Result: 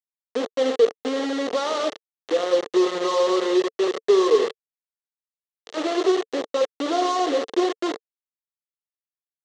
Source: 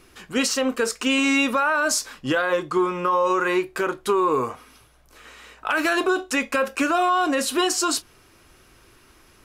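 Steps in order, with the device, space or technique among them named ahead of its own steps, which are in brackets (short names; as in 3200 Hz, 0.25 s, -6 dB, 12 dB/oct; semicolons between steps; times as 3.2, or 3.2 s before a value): harmonic-percussive split percussive -11 dB; spring tank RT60 1.7 s, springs 42/49 ms, chirp 50 ms, DRR 9.5 dB; dynamic EQ 350 Hz, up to +5 dB, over -35 dBFS, Q 1.9; elliptic low-pass 1300 Hz, stop band 40 dB; hand-held game console (bit-crush 4-bit; speaker cabinet 420–5700 Hz, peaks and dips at 450 Hz +10 dB, 960 Hz -8 dB, 1500 Hz -8 dB, 2400 Hz -10 dB, 5000 Hz -6 dB)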